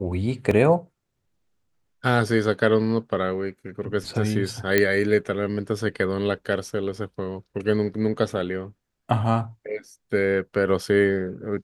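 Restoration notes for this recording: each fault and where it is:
0:00.51: drop-out 2.9 ms
0:04.78: click −5 dBFS

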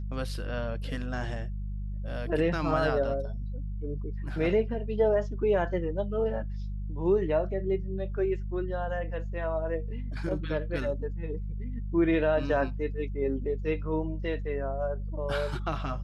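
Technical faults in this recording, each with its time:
mains hum 50 Hz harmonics 4 −34 dBFS

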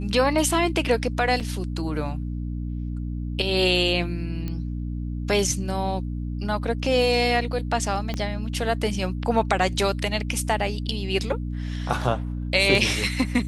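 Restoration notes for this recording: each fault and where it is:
mains hum 60 Hz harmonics 5 −29 dBFS
0:01.40–0:01.41: drop-out 5.2 ms
0:04.48: click −18 dBFS
0:08.14: click −15 dBFS

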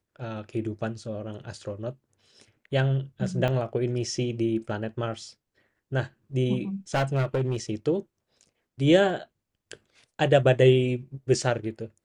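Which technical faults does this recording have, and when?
0:03.48: drop-out 3.1 ms
0:06.94–0:07.56: clipping −20.5 dBFS

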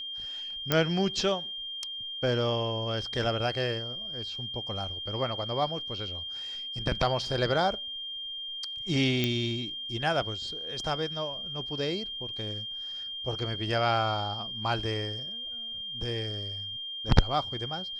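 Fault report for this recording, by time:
whistle 3,200 Hz −35 dBFS
0:00.72: click −8 dBFS
0:09.24: click −13 dBFS

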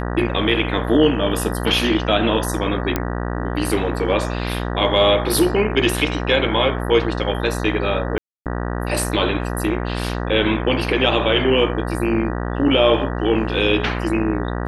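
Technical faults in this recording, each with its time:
mains buzz 60 Hz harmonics 32 −24 dBFS
0:02.96: click −5 dBFS
0:08.18–0:08.46: drop-out 278 ms

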